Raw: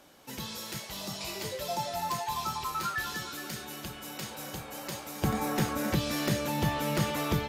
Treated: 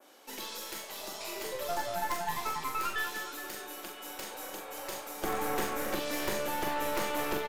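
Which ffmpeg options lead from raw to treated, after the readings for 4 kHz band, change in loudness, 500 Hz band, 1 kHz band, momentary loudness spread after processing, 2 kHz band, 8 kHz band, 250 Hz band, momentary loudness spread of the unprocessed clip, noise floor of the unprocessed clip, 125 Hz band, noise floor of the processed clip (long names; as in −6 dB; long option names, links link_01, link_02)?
−3.0 dB, −2.0 dB, 0.0 dB, −0.5 dB, 8 LU, 0.0 dB, −1.5 dB, −7.5 dB, 10 LU, −45 dBFS, −16.0 dB, −46 dBFS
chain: -filter_complex "[0:a]highpass=frequency=290:width=0.5412,highpass=frequency=290:width=1.3066,adynamicequalizer=threshold=0.00282:dfrequency=4500:dqfactor=0.83:tfrequency=4500:tqfactor=0.83:attack=5:release=100:ratio=0.375:range=3:mode=cutabove:tftype=bell,aeval=exprs='0.168*(cos(1*acos(clip(val(0)/0.168,-1,1)))-cos(1*PI/2))+0.0335*(cos(5*acos(clip(val(0)/0.168,-1,1)))-cos(5*PI/2))+0.0531*(cos(6*acos(clip(val(0)/0.168,-1,1)))-cos(6*PI/2))':channel_layout=same,asplit=2[link_01][link_02];[link_02]adelay=43,volume=-5.5dB[link_03];[link_01][link_03]amix=inputs=2:normalize=0,volume=-6.5dB"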